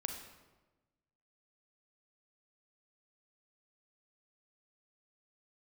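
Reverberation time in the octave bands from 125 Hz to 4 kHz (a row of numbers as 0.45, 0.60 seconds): 1.5, 1.4, 1.3, 1.1, 0.95, 0.80 seconds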